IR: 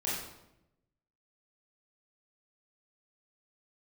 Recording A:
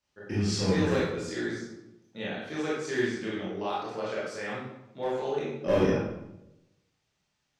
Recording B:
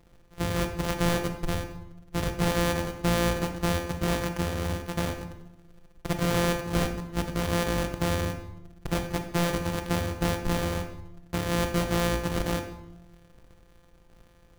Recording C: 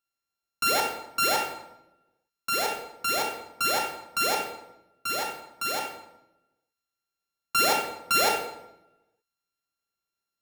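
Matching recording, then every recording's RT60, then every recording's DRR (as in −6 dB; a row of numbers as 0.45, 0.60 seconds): A; 0.85, 0.90, 0.85 seconds; −8.0, 6.0, 0.5 decibels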